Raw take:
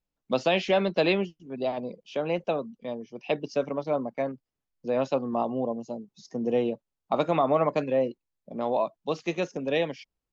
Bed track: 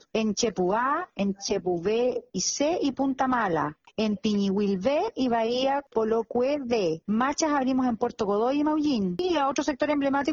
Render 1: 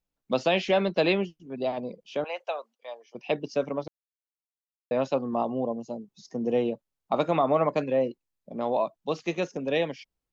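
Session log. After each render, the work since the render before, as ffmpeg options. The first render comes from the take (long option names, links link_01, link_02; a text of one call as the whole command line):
ffmpeg -i in.wav -filter_complex "[0:a]asettb=1/sr,asplit=3[link_01][link_02][link_03];[link_01]atrim=end=2.244[link_04];[link_02]atrim=start=2.24:end=3.15,asetpts=PTS-STARTPTS,afade=type=in:duration=0.004:curve=qsin,afade=type=out:start_time=0.906:duration=0.004:curve=qsin,highpass=frequency=630:width=0.5412,highpass=frequency=630:width=1.3066[link_05];[link_03]atrim=start=3.146[link_06];[link_04][link_05]acrossfade=duration=0.004:curve1=hsin:curve2=qsin[link_07];[link_07][link_06]acrossfade=duration=0.004:curve1=qsin:curve2=hsin,asplit=3[link_08][link_09][link_10];[link_08]atrim=end=3.88,asetpts=PTS-STARTPTS,afade=type=out:start_time=3.876:duration=0.004:curve=hsin[link_11];[link_09]atrim=start=3.88:end=4.91,asetpts=PTS-STARTPTS,volume=0[link_12];[link_10]atrim=start=4.91,asetpts=PTS-STARTPTS,afade=type=in:duration=0.004:curve=hsin[link_13];[link_11][link_12][link_13]concat=n=3:v=0:a=1" out.wav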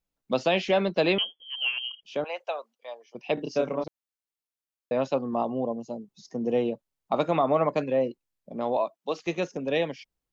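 ffmpeg -i in.wav -filter_complex "[0:a]asettb=1/sr,asplit=3[link_01][link_02][link_03];[link_01]atrim=end=1.184[link_04];[link_02]atrim=start=1.18:end=2.03,asetpts=PTS-STARTPTS,afade=type=in:duration=0.004:curve=qsin,afade=type=out:start_time=0.846:duration=0.004:curve=qsin,lowpass=frequency=2900:width_type=q:width=0.5098,lowpass=frequency=2900:width_type=q:width=0.6013,lowpass=frequency=2900:width_type=q:width=0.9,lowpass=frequency=2900:width_type=q:width=2.563,afreqshift=-3400[link_05];[link_03]atrim=start=2.026[link_06];[link_04][link_05]acrossfade=duration=0.004:curve1=hsin:curve2=qsin[link_07];[link_07][link_06]acrossfade=duration=0.004:curve1=qsin:curve2=hsin,asettb=1/sr,asplit=3[link_08][link_09][link_10];[link_08]atrim=end=3.344[link_11];[link_09]atrim=start=3.34:end=3.84,asetpts=PTS-STARTPTS,afade=type=in:duration=0.004:curve=qsin,afade=type=out:start_time=0.496:duration=0.004:curve=qsin,asplit=2[link_12][link_13];[link_13]adelay=31,volume=-2.5dB[link_14];[link_12][link_14]amix=inputs=2:normalize=0,atrim=end_sample=22050[link_15];[link_10]atrim=start=3.836[link_16];[link_11][link_15]acrossfade=duration=0.004:curve1=hsin:curve2=qsin[link_17];[link_17][link_16]acrossfade=duration=0.004:curve1=qsin:curve2=hsin,asettb=1/sr,asplit=3[link_18][link_19][link_20];[link_18]atrim=end=8.774[link_21];[link_19]atrim=start=8.77:end=9.27,asetpts=PTS-STARTPTS,afade=type=in:duration=0.004:curve=qsin,afade=type=out:start_time=0.496:duration=0.004:curve=qsin,highpass=290[link_22];[link_20]atrim=start=9.266[link_23];[link_21][link_22]acrossfade=duration=0.004:curve1=hsin:curve2=qsin[link_24];[link_24][link_23]acrossfade=duration=0.004:curve1=qsin:curve2=hsin" out.wav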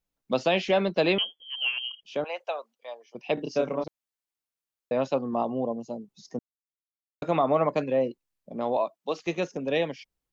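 ffmpeg -i in.wav -filter_complex "[0:a]asplit=3[link_01][link_02][link_03];[link_01]atrim=end=6.39,asetpts=PTS-STARTPTS,afade=type=out:start_time=6.386:duration=0.004:curve=hsin[link_04];[link_02]atrim=start=6.39:end=7.22,asetpts=PTS-STARTPTS,volume=0[link_05];[link_03]atrim=start=7.22,asetpts=PTS-STARTPTS,afade=type=in:duration=0.004:curve=hsin[link_06];[link_04][link_05][link_06]concat=n=3:v=0:a=1" out.wav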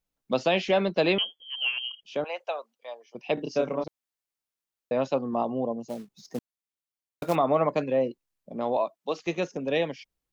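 ffmpeg -i in.wav -filter_complex "[0:a]asplit=3[link_01][link_02][link_03];[link_01]afade=type=out:start_time=5.87:duration=0.02[link_04];[link_02]acrusher=bits=4:mode=log:mix=0:aa=0.000001,afade=type=in:start_time=5.87:duration=0.02,afade=type=out:start_time=7.34:duration=0.02[link_05];[link_03]afade=type=in:start_time=7.34:duration=0.02[link_06];[link_04][link_05][link_06]amix=inputs=3:normalize=0" out.wav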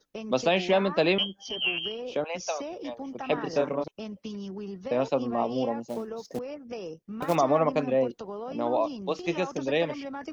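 ffmpeg -i in.wav -i bed.wav -filter_complex "[1:a]volume=-12.5dB[link_01];[0:a][link_01]amix=inputs=2:normalize=0" out.wav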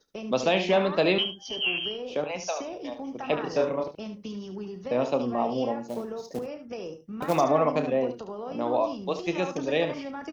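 ffmpeg -i in.wav -filter_complex "[0:a]asplit=2[link_01][link_02];[link_02]adelay=33,volume=-13dB[link_03];[link_01][link_03]amix=inputs=2:normalize=0,aecho=1:1:73:0.316" out.wav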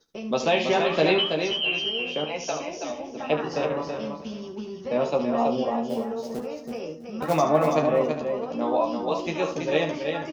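ffmpeg -i in.wav -filter_complex "[0:a]asplit=2[link_01][link_02];[link_02]adelay=13,volume=-3.5dB[link_03];[link_01][link_03]amix=inputs=2:normalize=0,aecho=1:1:328|656|984:0.531|0.101|0.0192" out.wav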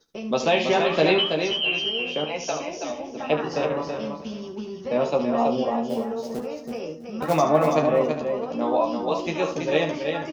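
ffmpeg -i in.wav -af "volume=1.5dB" out.wav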